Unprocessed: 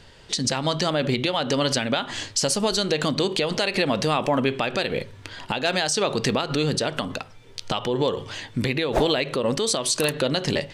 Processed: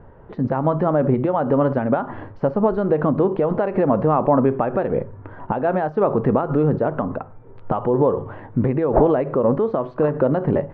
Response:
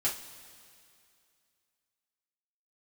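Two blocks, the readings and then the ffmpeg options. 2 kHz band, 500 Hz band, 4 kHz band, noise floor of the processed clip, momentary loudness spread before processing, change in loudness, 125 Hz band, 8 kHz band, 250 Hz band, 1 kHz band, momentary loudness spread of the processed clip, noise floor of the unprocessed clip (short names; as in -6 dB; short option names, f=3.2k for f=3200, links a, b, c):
-7.5 dB, +6.0 dB, under -30 dB, -42 dBFS, 8 LU, +3.5 dB, +6.0 dB, under -40 dB, +6.0 dB, +5.0 dB, 9 LU, -46 dBFS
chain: -af "lowpass=f=1.2k:w=0.5412,lowpass=f=1.2k:w=1.3066,volume=6dB"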